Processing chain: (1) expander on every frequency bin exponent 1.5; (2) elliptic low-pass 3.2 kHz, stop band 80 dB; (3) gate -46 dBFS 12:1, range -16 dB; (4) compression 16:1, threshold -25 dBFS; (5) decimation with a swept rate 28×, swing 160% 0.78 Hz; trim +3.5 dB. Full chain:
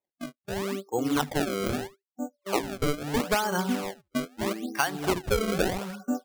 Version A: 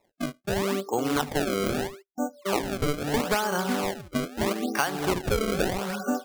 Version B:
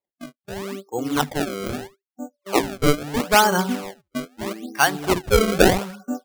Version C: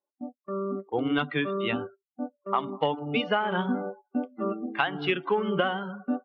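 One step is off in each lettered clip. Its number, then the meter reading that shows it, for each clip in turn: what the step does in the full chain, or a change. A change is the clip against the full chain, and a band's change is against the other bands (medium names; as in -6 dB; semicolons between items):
1, momentary loudness spread change -4 LU; 4, mean gain reduction 3.0 dB; 5, 125 Hz band -2.5 dB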